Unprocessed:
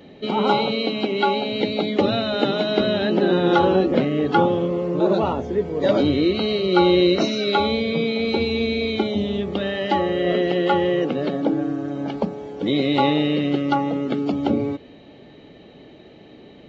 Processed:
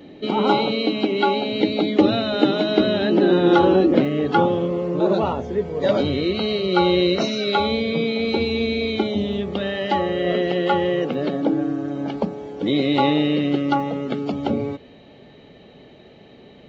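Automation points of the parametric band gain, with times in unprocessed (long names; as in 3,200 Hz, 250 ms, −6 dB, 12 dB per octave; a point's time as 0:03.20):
parametric band 310 Hz 0.26 octaves
+10 dB
from 0:04.05 −1 dB
from 0:05.28 −8.5 dB
from 0:07.71 +1.5 dB
from 0:09.33 −5 dB
from 0:11.14 +1.5 dB
from 0:13.80 −7.5 dB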